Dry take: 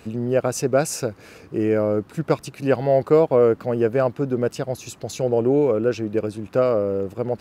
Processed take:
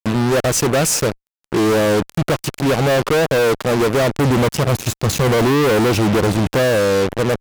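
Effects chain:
0:04.19–0:06.59: low-shelf EQ 420 Hz +11 dB
fuzz pedal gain 37 dB, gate −33 dBFS

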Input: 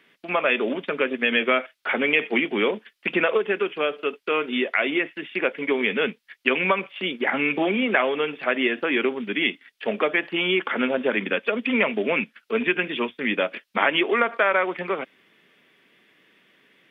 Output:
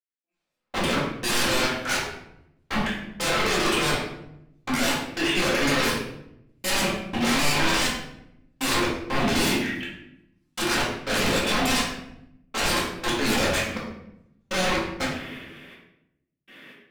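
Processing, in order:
high-pass filter 58 Hz
mains-hum notches 50/100/150/200/250/300/350 Hz
transient designer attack −9 dB, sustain +7 dB
brickwall limiter −18 dBFS, peak gain reduction 10.5 dB
wave folding −31 dBFS
gate pattern "...x.xxx" 61 BPM −60 dB
rectangular room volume 210 cubic metres, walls mixed, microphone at 2.1 metres
level +6 dB

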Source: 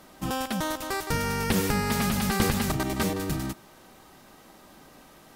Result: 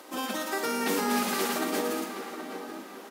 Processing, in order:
Chebyshev high-pass filter 250 Hz, order 4
in parallel at +1.5 dB: downward compressor 6 to 1, threshold −38 dBFS, peak gain reduction 14.5 dB
on the sum: time stretch by phase vocoder 0.58×
double-tracking delay 21 ms −12 dB
on a send: tape delay 774 ms, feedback 44%, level −8 dB, low-pass 2,500 Hz
on the sum: four-comb reverb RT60 1.4 s, combs from 29 ms, DRR 6 dB

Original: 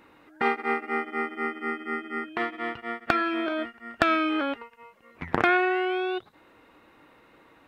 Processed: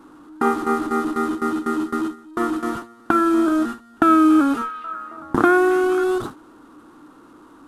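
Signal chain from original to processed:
linear delta modulator 64 kbit/s, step −27 dBFS
parametric band 77 Hz −6.5 dB 0.43 octaves
hum removal 62.84 Hz, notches 3
noise gate with hold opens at −20 dBFS
drawn EQ curve 170 Hz 0 dB, 300 Hz +10 dB, 540 Hz −7 dB, 1,300 Hz +4 dB, 2,100 Hz −17 dB, 3,400 Hz −11 dB, 5,300 Hz −14 dB, 9,000 Hz −9 dB
0:04.03–0:06.04: echo through a band-pass that steps 270 ms, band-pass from 2,700 Hz, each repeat −0.7 octaves, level −7 dB
level +5.5 dB

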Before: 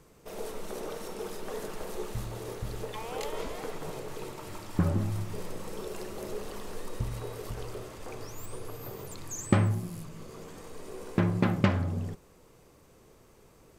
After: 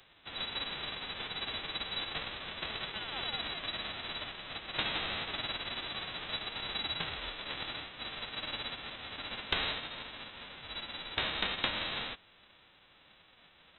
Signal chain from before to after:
spectral envelope flattened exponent 0.1
voice inversion scrambler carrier 3,900 Hz
downward compressor 2 to 1, threshold −36 dBFS, peak gain reduction 8.5 dB
level +1.5 dB

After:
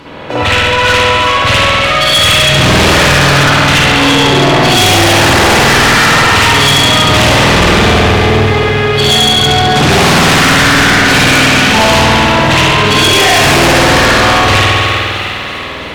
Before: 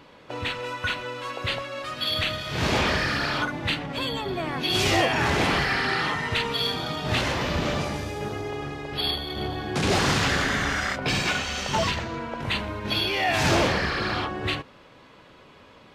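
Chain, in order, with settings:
spring reverb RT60 2.2 s, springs 50 ms, chirp 30 ms, DRR −9.5 dB
harmonic generator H 6 −26 dB, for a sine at −10.5 dBFS
delay with a high-pass on its return 333 ms, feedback 62%, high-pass 1,700 Hz, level −10 dB
in parallel at −6.5 dB: sine wavefolder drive 8 dB, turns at −10.5 dBFS
on the sum: level +6.5 dB

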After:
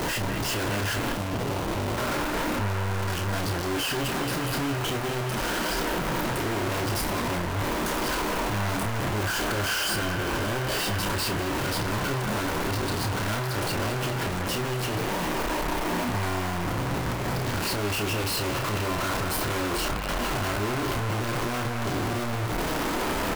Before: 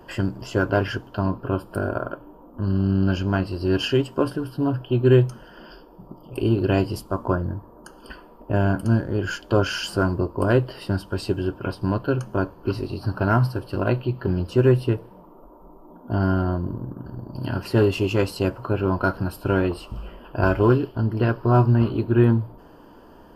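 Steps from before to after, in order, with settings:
sign of each sample alone
double-tracking delay 29 ms −6.5 dB
delay with a band-pass on its return 209 ms, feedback 81%, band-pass 1,300 Hz, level −5.5 dB
0:01.12–0:01.98: windowed peak hold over 17 samples
level −6 dB

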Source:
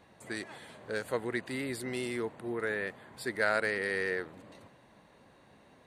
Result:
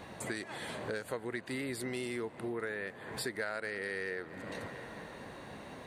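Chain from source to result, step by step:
tape delay 225 ms, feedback 70%, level −23 dB, low-pass 6,000 Hz
downward compressor 5 to 1, threshold −49 dBFS, peak gain reduction 22 dB
level +12 dB

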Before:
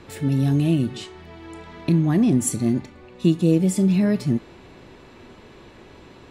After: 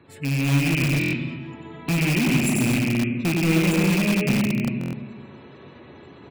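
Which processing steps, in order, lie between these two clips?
loose part that buzzes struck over −21 dBFS, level −10 dBFS
high-pass filter 77 Hz 24 dB per octave
low-shelf EQ 250 Hz +2.5 dB
tuned comb filter 140 Hz, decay 0.24 s, harmonics all, mix 50%
hum removal 105.6 Hz, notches 11
on a send: multi-tap delay 93/309 ms −4/−16 dB
on the sum: automatic gain control gain up to 5 dB
gate on every frequency bin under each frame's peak −25 dB strong
comb and all-pass reverb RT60 1.8 s, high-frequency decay 0.45×, pre-delay 100 ms, DRR 2 dB
in parallel at −6.5 dB: wrap-around overflow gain 11.5 dB
on the sum: buffer that repeats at 0:00.99/0:04.79, samples 1,024, times 5
level −7 dB

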